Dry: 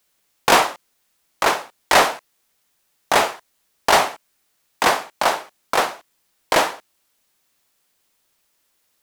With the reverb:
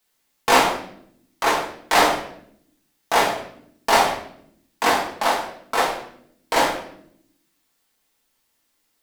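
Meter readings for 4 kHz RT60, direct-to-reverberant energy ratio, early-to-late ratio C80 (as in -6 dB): 0.55 s, -3.5 dB, 10.0 dB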